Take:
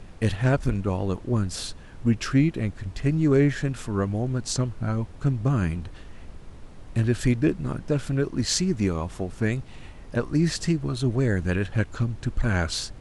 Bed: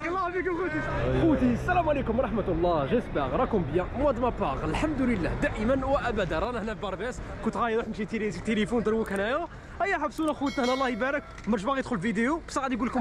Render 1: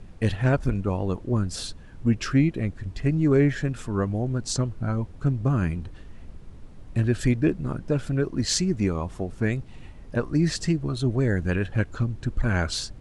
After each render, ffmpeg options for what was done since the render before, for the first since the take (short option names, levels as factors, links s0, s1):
-af "afftdn=nr=6:nf=-44"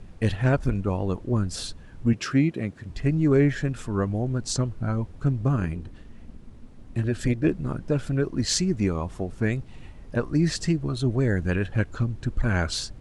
-filter_complex "[0:a]asettb=1/sr,asplit=3[s0][s1][s2];[s0]atrim=end=2.134[s3];[s1]atrim=start=2.13:end=2.9,asetpts=PTS-STARTPTS,afade=t=in:d=0.004:c=qsin,afade=t=out:st=0.766:d=0.004:c=qsin,highpass=130[s4];[s2]atrim=start=2.896[s5];[s3][s4]acrossfade=d=0.004:c1=hsin:c2=qsin[s6];[s6][s5]acrossfade=d=0.004:c1=qsin:c2=hsin,asettb=1/sr,asplit=3[s7][s8][s9];[s7]atrim=end=5.564[s10];[s8]atrim=start=5.56:end=7.45,asetpts=PTS-STARTPTS,afade=t=in:d=0.004:c=qsin,afade=t=out:st=1.886:d=0.004:c=qsin,tremolo=f=230:d=0.519[s11];[s9]atrim=start=7.446[s12];[s10][s11]acrossfade=d=0.004:c1=hsin:c2=qsin[s13];[s13][s12]acrossfade=d=0.004:c1=qsin:c2=hsin"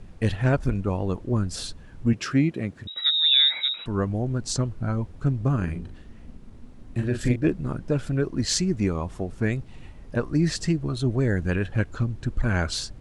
-filter_complex "[0:a]asettb=1/sr,asplit=3[s0][s1][s2];[s0]atrim=end=2.874[s3];[s1]atrim=start=2.87:end=3.86,asetpts=PTS-STARTPTS,afade=t=in:d=0.004:c=qsin,afade=t=out:st=0.986:d=0.004:c=qsin,lowpass=f=3300:t=q:w=0.5098,lowpass=f=3300:t=q:w=0.6013,lowpass=f=3300:t=q:w=0.9,lowpass=f=3300:t=q:w=2.563,afreqshift=-3900[s4];[s2]atrim=start=3.856[s5];[s3][s4]acrossfade=d=0.004:c1=hsin:c2=qsin[s6];[s6][s5]acrossfade=d=0.004:c1=qsin:c2=hsin,asettb=1/sr,asplit=3[s7][s8][s9];[s7]atrim=end=5.644[s10];[s8]atrim=start=5.64:end=7.36,asetpts=PTS-STARTPTS,afade=t=in:d=0.004:c=qsin,afade=t=out:st=1.716:d=0.004:c=qsin,asplit=2[s11][s12];[s12]adelay=40,volume=0.447[s13];[s11][s13]amix=inputs=2:normalize=0,atrim=end_sample=75852[s14];[s9]atrim=start=7.356[s15];[s10][s14]acrossfade=d=0.004:c1=hsin:c2=qsin[s16];[s16][s15]acrossfade=d=0.004:c1=qsin:c2=hsin"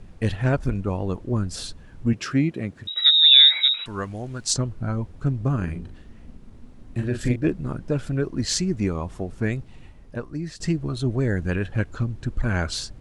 -filter_complex "[0:a]asettb=1/sr,asplit=3[s0][s1][s2];[s0]atrim=end=2.854[s3];[s1]atrim=start=2.85:end=4.54,asetpts=PTS-STARTPTS,afade=t=in:d=0.004:c=qsin,afade=t=out:st=1.686:d=0.004:c=qsin,tiltshelf=f=970:g=-7.5[s4];[s2]atrim=start=4.536[s5];[s3][s4]acrossfade=d=0.004:c1=hsin:c2=qsin[s6];[s6][s5]acrossfade=d=0.004:c1=qsin:c2=hsin,asplit=2[s7][s8];[s7]atrim=end=10.6,asetpts=PTS-STARTPTS,afade=t=out:st=9.51:d=1.09:silence=0.223872[s9];[s8]atrim=start=10.6,asetpts=PTS-STARTPTS,afade=t=in:d=0.004:c=hsin:silence=0.223872[s10];[s9][s10]concat=n=2:v=0:a=1"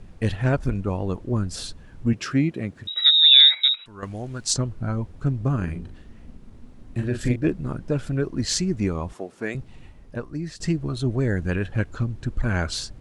-filter_complex "[0:a]asettb=1/sr,asplit=3[s0][s1][s2];[s0]atrim=end=3.404[s3];[s1]atrim=start=3.4:end=4.03,asetpts=PTS-STARTPTS,afade=t=in:d=0.004:c=qsin,afade=t=out:st=0.626:d=0.004:c=qsin,agate=range=0.282:threshold=0.0562:ratio=16:release=100:detection=peak[s4];[s2]atrim=start=4.026[s5];[s3][s4]acrossfade=d=0.004:c1=hsin:c2=qsin[s6];[s6][s5]acrossfade=d=0.004:c1=qsin:c2=hsin,asettb=1/sr,asplit=3[s7][s8][s9];[s7]atrim=end=9.134[s10];[s8]atrim=start=9.13:end=9.55,asetpts=PTS-STARTPTS,afade=t=in:d=0.004:c=qsin,afade=t=out:st=0.416:d=0.004:c=qsin,highpass=320[s11];[s9]atrim=start=9.546[s12];[s10][s11]acrossfade=d=0.004:c1=hsin:c2=qsin[s13];[s13][s12]acrossfade=d=0.004:c1=qsin:c2=hsin"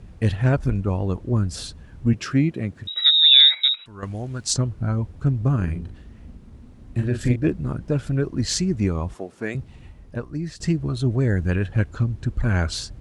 -af "highpass=48,lowshelf=f=95:g=10"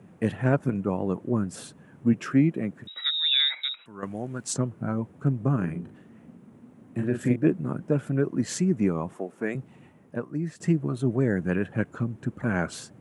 -af "highpass=f=150:w=0.5412,highpass=f=150:w=1.3066,equalizer=f=4500:w=1.1:g=-14.5"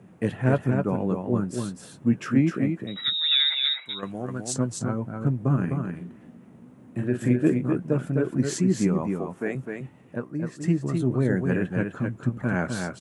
-filter_complex "[0:a]asplit=2[s0][s1];[s1]adelay=16,volume=0.224[s2];[s0][s2]amix=inputs=2:normalize=0,asplit=2[s3][s4];[s4]aecho=0:1:255:0.562[s5];[s3][s5]amix=inputs=2:normalize=0"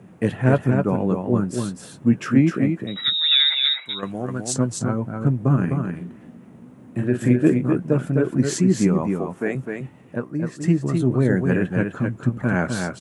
-af "volume=1.68"